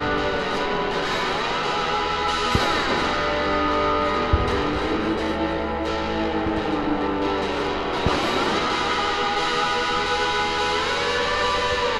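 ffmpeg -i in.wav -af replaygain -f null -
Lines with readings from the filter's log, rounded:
track_gain = +5.3 dB
track_peak = 0.344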